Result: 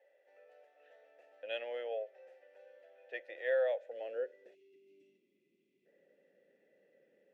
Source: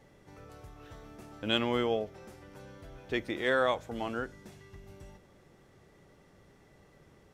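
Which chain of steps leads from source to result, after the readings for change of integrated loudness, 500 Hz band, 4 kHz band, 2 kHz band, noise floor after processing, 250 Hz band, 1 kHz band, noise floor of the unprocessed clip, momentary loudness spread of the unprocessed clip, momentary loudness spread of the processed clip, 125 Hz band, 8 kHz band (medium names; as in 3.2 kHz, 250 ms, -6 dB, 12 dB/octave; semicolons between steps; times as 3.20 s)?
-6.5 dB, -3.5 dB, -16.0 dB, -9.0 dB, -77 dBFS, under -25 dB, -15.5 dB, -61 dBFS, 23 LU, 14 LU, under -40 dB, no reading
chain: vowel filter e; time-frequency box 4.55–5.86 s, 430–2000 Hz -24 dB; high-pass sweep 710 Hz -> 210 Hz, 3.63–5.41 s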